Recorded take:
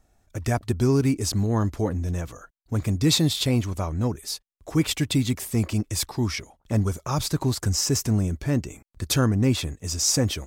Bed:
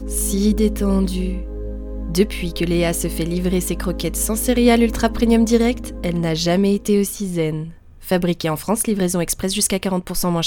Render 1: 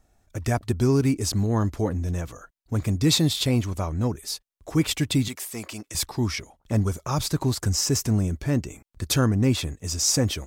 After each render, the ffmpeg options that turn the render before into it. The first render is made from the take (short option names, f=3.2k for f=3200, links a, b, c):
-filter_complex "[0:a]asettb=1/sr,asplit=3[a][b][c];[a]atrim=end=5.284[d];[b]atrim=start=5.28:end=5.95,asetpts=PTS-STARTPTS,afade=t=in:d=0.004:c=qsin,afade=t=out:st=0.666:d=0.004:c=qsin,highpass=f=840:p=1[e];[c]atrim=start=5.946[f];[d][e]acrossfade=d=0.004:c1=hsin:c2=qsin[g];[g][f]acrossfade=d=0.004:c1=qsin:c2=hsin"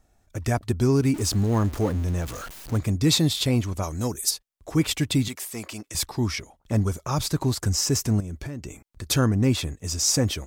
-filter_complex "[0:a]asettb=1/sr,asplit=3[a][b][c];[a]atrim=end=1.144[d];[b]atrim=start=1.14:end=2.78,asetpts=PTS-STARTPTS,afade=t=in:d=0.004:c=qsin,afade=t=out:st=1.636:d=0.004:c=qsin,aeval=exprs='val(0)+0.5*0.0224*sgn(val(0))':c=same[e];[c]atrim=start=2.776[f];[d][e]acrossfade=d=0.004:c1=hsin:c2=qsin[g];[g][f]acrossfade=d=0.004:c1=qsin:c2=hsin,asplit=3[h][i][j];[h]afade=t=out:st=3.82:d=0.02[k];[i]bass=f=250:g=-4,treble=f=4k:g=15,afade=t=in:st=3.82:d=0.02,afade=t=out:st=4.29:d=0.02[l];[j]afade=t=in:st=4.29:d=0.02[m];[k][l][m]amix=inputs=3:normalize=0,asettb=1/sr,asplit=3[n][o][p];[n]atrim=end=8.204[q];[o]atrim=start=8.2:end=9.1,asetpts=PTS-STARTPTS,afade=t=in:d=0.004:c=qsin,afade=t=out:st=0.896:d=0.004:c=qsin,acompressor=threshold=-29dB:ratio=16:attack=3.2:release=140:knee=1:detection=peak[r];[p]atrim=start=9.096[s];[q][r]acrossfade=d=0.004:c1=hsin:c2=qsin[t];[t][s]acrossfade=d=0.004:c1=qsin:c2=hsin"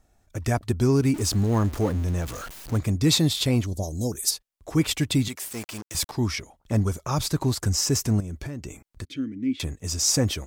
-filter_complex "[0:a]asettb=1/sr,asplit=3[a][b][c];[a]atrim=end=3.664[d];[b]atrim=start=3.66:end=4.12,asetpts=PTS-STARTPTS,afade=t=in:d=0.004:c=qsin,afade=t=out:st=0.456:d=0.004:c=qsin,asuperstop=centerf=1700:order=8:qfactor=0.56[e];[c]atrim=start=4.116[f];[d][e]acrossfade=d=0.004:c1=hsin:c2=qsin[g];[g][f]acrossfade=d=0.004:c1=qsin:c2=hsin,asettb=1/sr,asplit=3[h][i][j];[h]atrim=end=5.444[k];[i]atrim=start=5.44:end=6.12,asetpts=PTS-STARTPTS,afade=t=in:d=0.004:c=qsin,afade=t=out:st=0.676:d=0.004:c=qsin,acrusher=bits=5:mix=0:aa=0.5[l];[j]atrim=start=6.116[m];[k][l]acrossfade=d=0.004:c1=hsin:c2=qsin[n];[n][m]acrossfade=d=0.004:c1=qsin:c2=hsin,asettb=1/sr,asplit=3[o][p][q];[o]atrim=end=9.054[r];[p]atrim=start=9.05:end=9.6,asetpts=PTS-STARTPTS,afade=t=in:d=0.004:c=qsin,afade=t=out:st=0.546:d=0.004:c=qsin,asplit=3[s][t][u];[s]bandpass=f=270:t=q:w=8,volume=0dB[v];[t]bandpass=f=2.29k:t=q:w=8,volume=-6dB[w];[u]bandpass=f=3.01k:t=q:w=8,volume=-9dB[x];[v][w][x]amix=inputs=3:normalize=0[y];[q]atrim=start=9.596[z];[r][y]acrossfade=d=0.004:c1=hsin:c2=qsin[aa];[aa][z]acrossfade=d=0.004:c1=qsin:c2=hsin"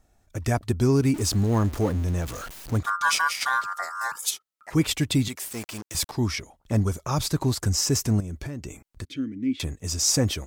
-filter_complex "[0:a]asettb=1/sr,asplit=3[a][b][c];[a]atrim=end=2.834[d];[b]atrim=start=2.83:end=4.73,asetpts=PTS-STARTPTS,afade=t=in:d=0.004:c=qsin,afade=t=out:st=1.896:d=0.004:c=qsin,aeval=exprs='val(0)*sin(2*PI*1300*n/s)':c=same[e];[c]atrim=start=4.726[f];[d][e]acrossfade=d=0.004:c1=hsin:c2=qsin[g];[g][f]acrossfade=d=0.004:c1=qsin:c2=hsin"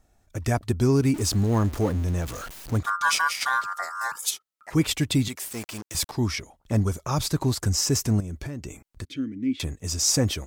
-af anull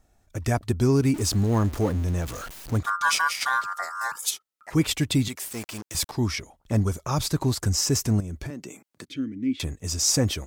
-filter_complex "[0:a]asettb=1/sr,asplit=3[a][b][c];[a]atrim=end=8.504[d];[b]atrim=start=8.5:end=9.08,asetpts=PTS-STARTPTS,afade=t=in:d=0.004:c=qsin,afade=t=out:st=0.576:d=0.004:c=qsin,highpass=f=170:w=0.5412,highpass=f=170:w=1.3066[e];[c]atrim=start=9.076[f];[d][e]acrossfade=d=0.004:c1=hsin:c2=qsin[g];[g][f]acrossfade=d=0.004:c1=qsin:c2=hsin"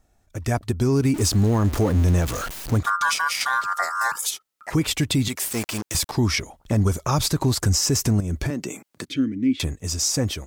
-af "dynaudnorm=f=160:g=13:m=10dB,alimiter=limit=-12dB:level=0:latency=1:release=145"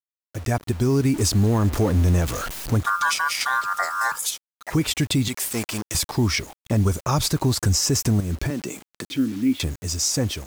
-af "acrusher=bits=6:mix=0:aa=0.000001"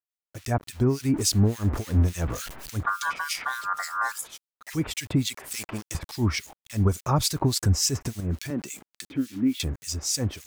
-filter_complex "[0:a]acrossover=split=1900[a][b];[a]aeval=exprs='val(0)*(1-1/2+1/2*cos(2*PI*3.5*n/s))':c=same[c];[b]aeval=exprs='val(0)*(1-1/2-1/2*cos(2*PI*3.5*n/s))':c=same[d];[c][d]amix=inputs=2:normalize=0"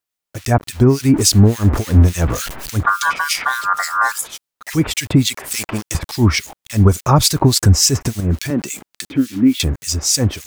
-af "volume=11dB,alimiter=limit=-2dB:level=0:latency=1"